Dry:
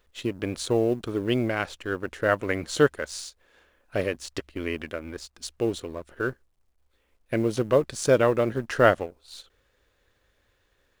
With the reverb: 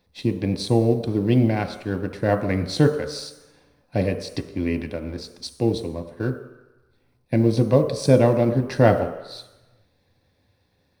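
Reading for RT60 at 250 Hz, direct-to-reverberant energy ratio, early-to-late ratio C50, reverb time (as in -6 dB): 0.80 s, 6.0 dB, 10.0 dB, 1.0 s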